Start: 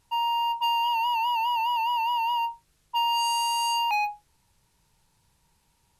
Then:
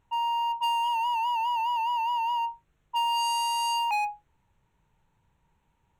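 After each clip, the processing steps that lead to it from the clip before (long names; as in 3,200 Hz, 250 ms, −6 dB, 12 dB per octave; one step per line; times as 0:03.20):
adaptive Wiener filter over 9 samples
level −1 dB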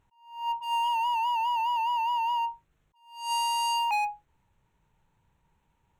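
level that may rise only so fast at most 110 dB per second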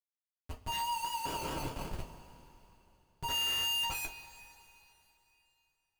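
elliptic high-pass filter 1,300 Hz, stop band 70 dB
comparator with hysteresis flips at −36 dBFS
coupled-rooms reverb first 0.2 s, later 3.2 s, from −22 dB, DRR −3 dB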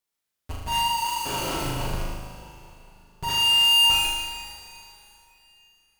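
in parallel at −6 dB: sine wavefolder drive 10 dB, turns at −23.5 dBFS
on the sum: flutter between parallel walls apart 6.6 metres, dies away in 1.1 s
level −1.5 dB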